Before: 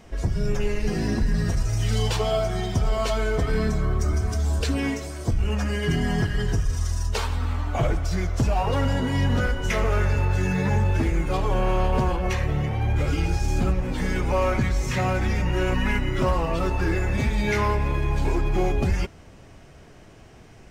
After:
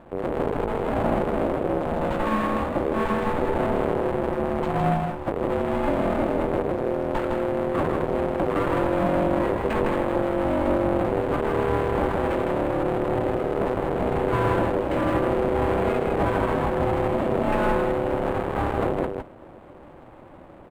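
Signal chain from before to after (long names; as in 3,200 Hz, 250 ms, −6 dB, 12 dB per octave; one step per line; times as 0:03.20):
each half-wave held at its own peak
high-pass filter 370 Hz 6 dB per octave
spectral tilt −2.5 dB per octave
brickwall limiter −14.5 dBFS, peak gain reduction 5 dB
ring modulation 440 Hz
high-frequency loss of the air 280 metres
single-tap delay 159 ms −4 dB
linearly interpolated sample-rate reduction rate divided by 4×
level +2 dB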